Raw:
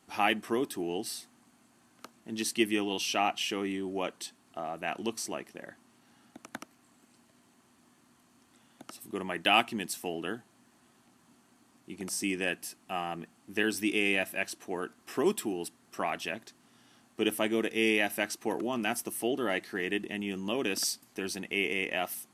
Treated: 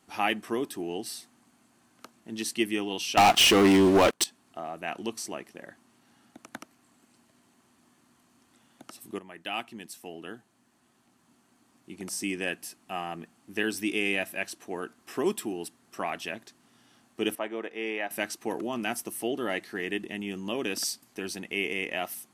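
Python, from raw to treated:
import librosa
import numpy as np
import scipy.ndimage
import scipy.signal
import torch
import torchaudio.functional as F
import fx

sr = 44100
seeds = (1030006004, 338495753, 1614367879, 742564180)

y = fx.leveller(x, sr, passes=5, at=(3.17, 4.24))
y = fx.bandpass_q(y, sr, hz=920.0, q=0.85, at=(17.35, 18.11))
y = fx.edit(y, sr, fx.fade_in_from(start_s=9.19, length_s=2.89, floor_db=-12.5), tone=tone)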